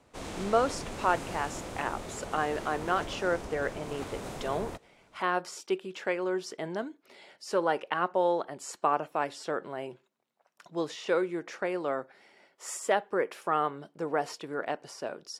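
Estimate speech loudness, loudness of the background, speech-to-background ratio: -32.0 LUFS, -40.5 LUFS, 8.5 dB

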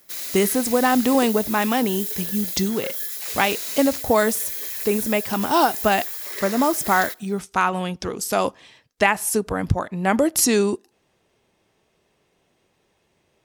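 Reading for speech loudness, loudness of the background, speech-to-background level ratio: -22.0 LUFS, -27.5 LUFS, 5.5 dB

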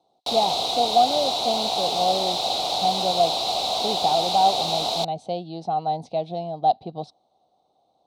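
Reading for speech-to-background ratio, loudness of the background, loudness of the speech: -2.0 dB, -23.5 LUFS, -25.5 LUFS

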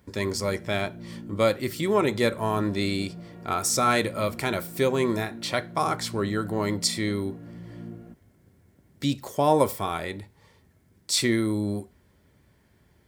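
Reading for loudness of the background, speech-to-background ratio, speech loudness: -42.0 LUFS, 15.5 dB, -26.5 LUFS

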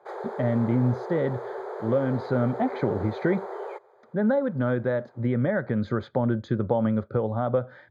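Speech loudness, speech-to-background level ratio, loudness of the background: -26.5 LUFS, 9.5 dB, -36.0 LUFS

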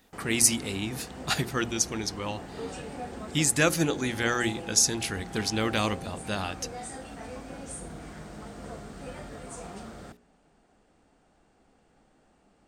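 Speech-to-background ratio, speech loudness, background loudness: 14.0 dB, -27.0 LUFS, -41.0 LUFS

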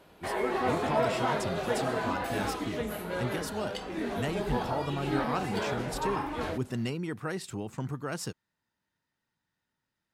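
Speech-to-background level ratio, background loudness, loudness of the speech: -4.0 dB, -32.5 LUFS, -36.5 LUFS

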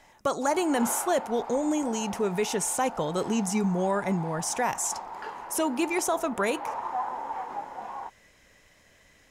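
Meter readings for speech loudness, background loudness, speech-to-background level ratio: -28.0 LUFS, -37.5 LUFS, 9.5 dB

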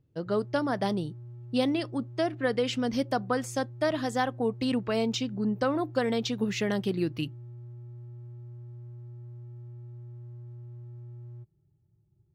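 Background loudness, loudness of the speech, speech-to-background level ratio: -45.0 LUFS, -29.5 LUFS, 15.5 dB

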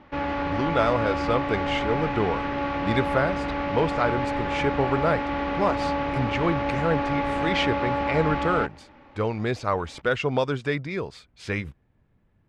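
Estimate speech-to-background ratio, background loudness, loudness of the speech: 0.5 dB, -27.5 LUFS, -27.0 LUFS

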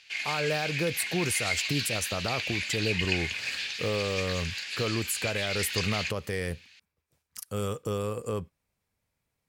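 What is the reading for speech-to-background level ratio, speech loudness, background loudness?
-1.0 dB, -32.0 LUFS, -31.0 LUFS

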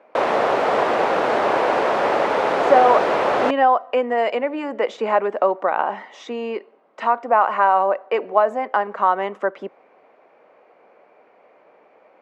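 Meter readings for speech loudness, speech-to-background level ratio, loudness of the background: -20.0 LUFS, -0.5 dB, -19.5 LUFS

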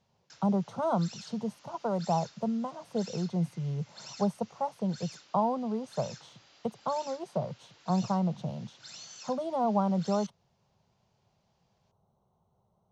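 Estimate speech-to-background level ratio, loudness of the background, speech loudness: 17.0 dB, -49.5 LUFS, -32.5 LUFS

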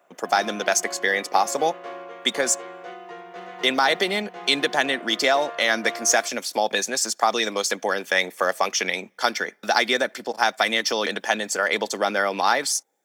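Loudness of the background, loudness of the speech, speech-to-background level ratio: -38.0 LUFS, -22.5 LUFS, 15.5 dB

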